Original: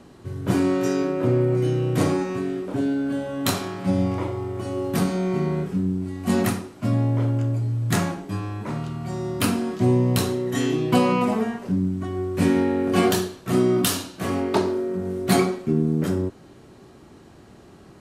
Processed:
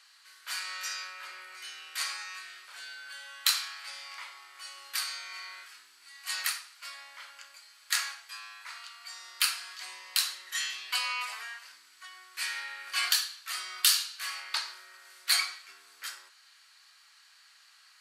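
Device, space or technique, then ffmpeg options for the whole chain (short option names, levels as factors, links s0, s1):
headphones lying on a table: -af "highpass=f=1500:w=0.5412,highpass=f=1500:w=1.3066,equalizer=f=4500:t=o:w=0.22:g=10"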